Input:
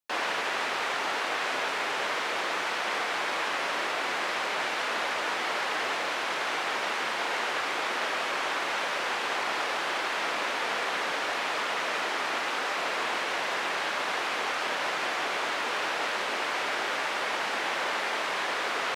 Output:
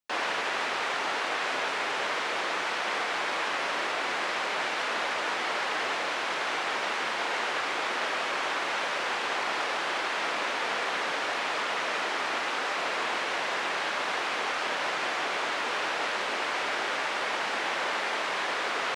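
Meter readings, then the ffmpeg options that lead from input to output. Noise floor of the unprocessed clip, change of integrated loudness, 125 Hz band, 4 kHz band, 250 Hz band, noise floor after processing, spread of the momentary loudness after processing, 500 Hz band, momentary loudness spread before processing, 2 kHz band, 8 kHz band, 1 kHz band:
-31 dBFS, 0.0 dB, 0.0 dB, 0.0 dB, 0.0 dB, -31 dBFS, 0 LU, 0.0 dB, 0 LU, 0.0 dB, -1.0 dB, 0.0 dB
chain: -af "equalizer=f=13000:t=o:w=0.36:g=-13"

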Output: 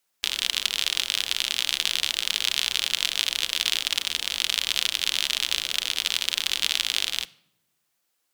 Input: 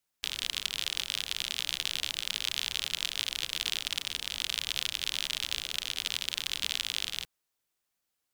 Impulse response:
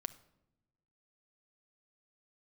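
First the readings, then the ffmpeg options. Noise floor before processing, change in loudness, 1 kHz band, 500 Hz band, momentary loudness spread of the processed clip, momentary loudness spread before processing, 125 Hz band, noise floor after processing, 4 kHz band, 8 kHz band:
-83 dBFS, +8.0 dB, +8.0 dB, +7.5 dB, 2 LU, 2 LU, no reading, -75 dBFS, +8.0 dB, +8.0 dB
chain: -filter_complex "[0:a]asplit=2[s0][s1];[s1]highpass=f=140:w=0.5412,highpass=f=140:w=1.3066[s2];[1:a]atrim=start_sample=2205[s3];[s2][s3]afir=irnorm=-1:irlink=0,volume=1.88[s4];[s0][s4]amix=inputs=2:normalize=0"

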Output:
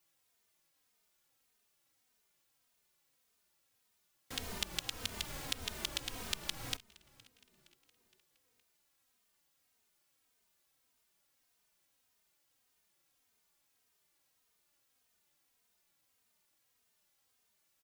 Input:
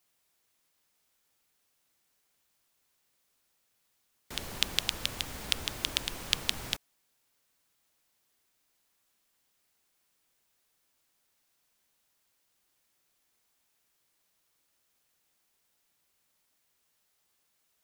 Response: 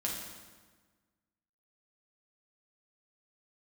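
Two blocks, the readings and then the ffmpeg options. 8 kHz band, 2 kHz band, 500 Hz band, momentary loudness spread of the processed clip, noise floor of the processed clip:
-5.5 dB, -7.0 dB, -4.5 dB, 5 LU, -77 dBFS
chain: -filter_complex "[0:a]acompressor=threshold=0.0316:ratio=6,asplit=5[s0][s1][s2][s3][s4];[s1]adelay=466,afreqshift=-130,volume=0.0668[s5];[s2]adelay=932,afreqshift=-260,volume=0.0359[s6];[s3]adelay=1398,afreqshift=-390,volume=0.0195[s7];[s4]adelay=1864,afreqshift=-520,volume=0.0105[s8];[s0][s5][s6][s7][s8]amix=inputs=5:normalize=0,asplit=2[s9][s10];[s10]adelay=3,afreqshift=-1.7[s11];[s9][s11]amix=inputs=2:normalize=1,volume=1.12"

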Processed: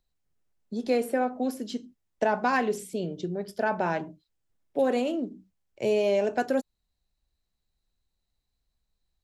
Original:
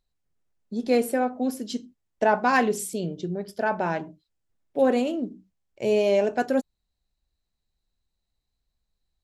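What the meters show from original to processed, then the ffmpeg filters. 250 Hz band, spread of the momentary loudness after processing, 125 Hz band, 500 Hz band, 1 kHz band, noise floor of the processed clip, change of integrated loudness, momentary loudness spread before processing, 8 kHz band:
-3.5 dB, 11 LU, -3.0 dB, -2.5 dB, -3.0 dB, -81 dBFS, -3.0 dB, 13 LU, -7.5 dB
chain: -filter_complex "[0:a]acrossover=split=300|3100[s0][s1][s2];[s0]acompressor=threshold=0.02:ratio=4[s3];[s1]acompressor=threshold=0.0794:ratio=4[s4];[s2]acompressor=threshold=0.00631:ratio=4[s5];[s3][s4][s5]amix=inputs=3:normalize=0"

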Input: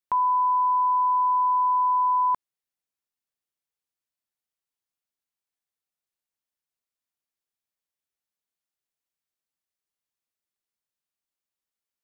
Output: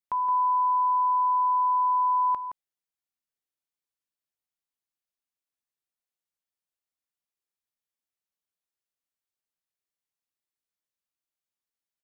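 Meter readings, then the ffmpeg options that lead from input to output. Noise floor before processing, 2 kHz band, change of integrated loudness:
under -85 dBFS, no reading, -1.5 dB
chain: -af "aecho=1:1:169:0.398,volume=0.596"

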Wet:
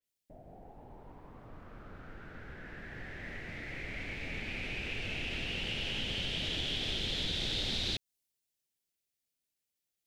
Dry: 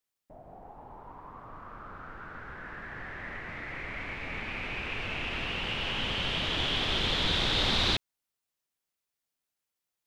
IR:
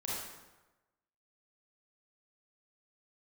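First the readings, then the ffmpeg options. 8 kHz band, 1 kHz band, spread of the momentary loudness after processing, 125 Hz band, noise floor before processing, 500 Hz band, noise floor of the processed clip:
-2.5 dB, -13.0 dB, 21 LU, -4.5 dB, under -85 dBFS, -6.5 dB, under -85 dBFS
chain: -af "equalizer=f=1100:t=o:w=1:g=-14.5,acompressor=threshold=0.0224:ratio=4,adynamicequalizer=threshold=0.00251:dfrequency=4000:dqfactor=0.7:tfrequency=4000:tqfactor=0.7:attack=5:release=100:ratio=0.375:range=2:mode=boostabove:tftype=highshelf"

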